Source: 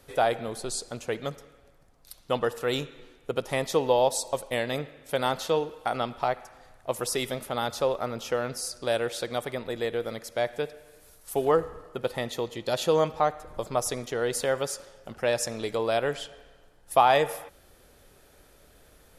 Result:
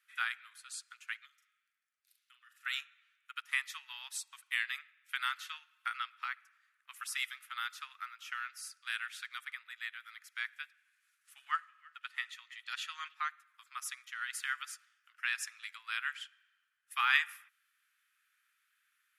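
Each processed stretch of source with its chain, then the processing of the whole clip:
1.25–2.66 s: amplifier tone stack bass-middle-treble 10-0-10 + compression 5:1, threshold -46 dBFS + doubling 41 ms -6 dB
10.71–13.14 s: low-pass 9 kHz + repeats whose band climbs or falls 325 ms, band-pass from 2.1 kHz, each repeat 0.7 oct, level -11.5 dB
whole clip: steep high-pass 1.3 kHz 48 dB/octave; resonant high shelf 3.3 kHz -6.5 dB, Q 1.5; upward expansion 1.5:1, over -56 dBFS; trim +2.5 dB

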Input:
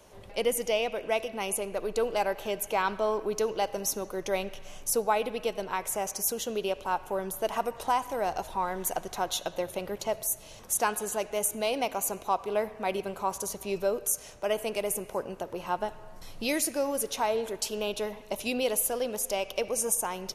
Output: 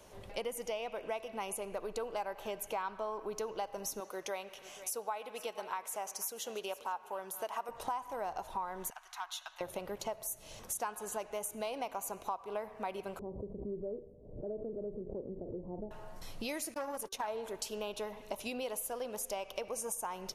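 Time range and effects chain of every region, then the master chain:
4.00–7.69 s: high-pass 610 Hz 6 dB/octave + delay 485 ms -18.5 dB
8.90–9.61 s: inverse Chebyshev high-pass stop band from 520 Hz + tilt EQ -3 dB/octave + transformer saturation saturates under 1.5 kHz
13.19–15.91 s: inverse Chebyshev low-pass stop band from 2 kHz, stop band 70 dB + doubling 39 ms -13 dB + swell ahead of each attack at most 83 dB/s
16.74–17.28 s: gate -37 dBFS, range -39 dB + de-hum 385.7 Hz, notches 4 + transformer saturation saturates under 1.2 kHz
whole clip: dynamic bell 1 kHz, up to +8 dB, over -43 dBFS, Q 1.2; compression 4:1, threshold -36 dBFS; trim -1.5 dB

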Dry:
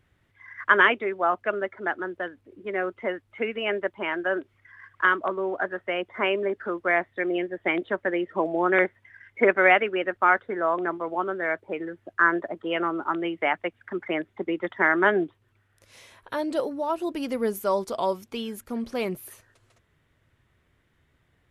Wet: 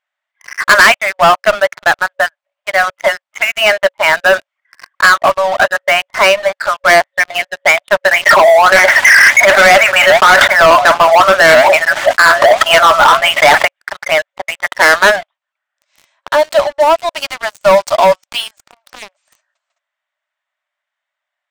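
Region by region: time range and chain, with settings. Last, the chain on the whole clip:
8.11–13.65 s: flange 1.3 Hz, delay 1.1 ms, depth 7.2 ms, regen +69% + level flattener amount 100%
18.68–19.21 s: compression 16:1, threshold -33 dBFS + loudspeaker Doppler distortion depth 0.3 ms
whole clip: FFT band-pass 550–8700 Hz; waveshaping leveller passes 5; trim +3 dB

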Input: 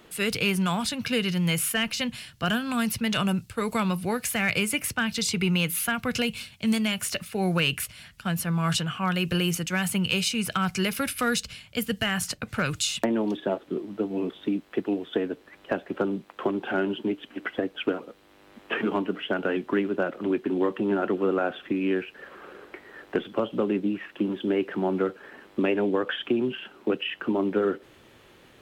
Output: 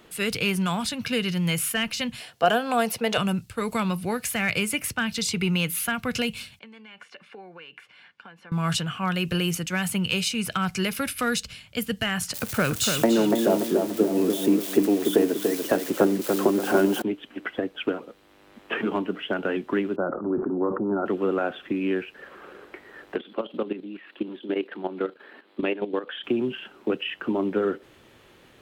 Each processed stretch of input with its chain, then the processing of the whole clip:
2.20–3.18 s: high-pass 180 Hz 6 dB/octave + bass shelf 310 Hz -6.5 dB + small resonant body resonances 490/700 Hz, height 15 dB, ringing for 20 ms
6.59–8.52 s: compression 16:1, threshold -33 dBFS + band-pass 430–2300 Hz + comb of notches 640 Hz
12.34–17.02 s: zero-crossing glitches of -25 dBFS + peaking EQ 410 Hz +6 dB 2.5 oct + filtered feedback delay 290 ms, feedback 44%, low-pass 2.9 kHz, level -4.5 dB
19.96–21.06 s: Chebyshev low-pass 1.4 kHz, order 5 + decay stretcher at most 53 dB/s
23.15–26.24 s: high-pass 210 Hz 24 dB/octave + resonant high shelf 4.9 kHz -6 dB, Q 3 + level held to a coarse grid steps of 12 dB
whole clip: none

